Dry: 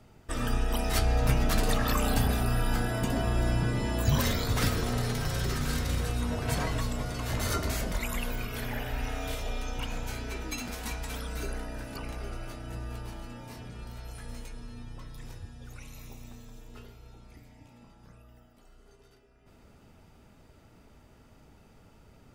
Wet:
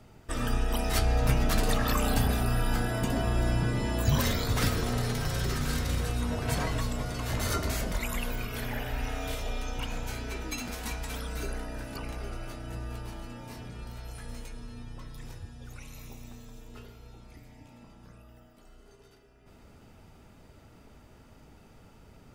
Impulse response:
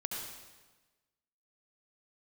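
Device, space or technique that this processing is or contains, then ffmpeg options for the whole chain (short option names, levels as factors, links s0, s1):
ducked reverb: -filter_complex "[0:a]asplit=3[s0][s1][s2];[1:a]atrim=start_sample=2205[s3];[s1][s3]afir=irnorm=-1:irlink=0[s4];[s2]apad=whole_len=985461[s5];[s4][s5]sidechaincompress=threshold=0.00355:ratio=8:attack=16:release=390,volume=0.376[s6];[s0][s6]amix=inputs=2:normalize=0"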